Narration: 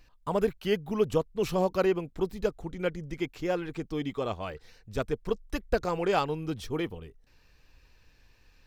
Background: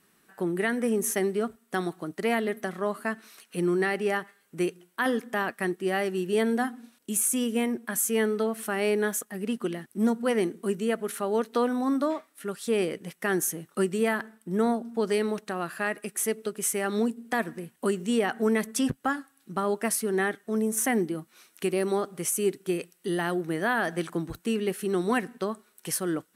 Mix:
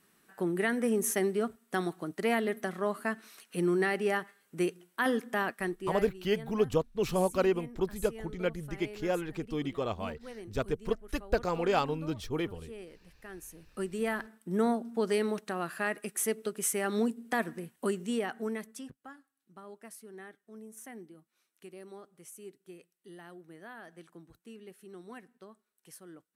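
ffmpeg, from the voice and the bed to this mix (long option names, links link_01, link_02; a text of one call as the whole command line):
ffmpeg -i stem1.wav -i stem2.wav -filter_complex "[0:a]adelay=5600,volume=-1.5dB[link_01];[1:a]volume=14.5dB,afade=type=out:start_time=5.45:duration=0.74:silence=0.133352,afade=type=in:start_time=13.46:duration=0.97:silence=0.141254,afade=type=out:start_time=17.65:duration=1.25:silence=0.11885[link_02];[link_01][link_02]amix=inputs=2:normalize=0" out.wav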